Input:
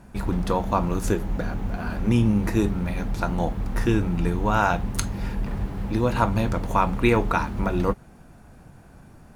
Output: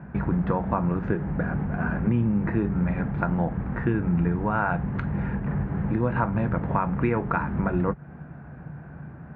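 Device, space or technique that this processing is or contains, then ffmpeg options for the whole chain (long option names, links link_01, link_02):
bass amplifier: -af "acompressor=threshold=-28dB:ratio=3,highpass=frequency=65:width=0.5412,highpass=frequency=65:width=1.3066,equalizer=frequency=100:width_type=q:width=4:gain=-6,equalizer=frequency=150:width_type=q:width=4:gain=10,equalizer=frequency=1600:width_type=q:width=4:gain=5,lowpass=frequency=2100:width=0.5412,lowpass=frequency=2100:width=1.3066,lowshelf=frequency=100:gain=6,volume=4dB"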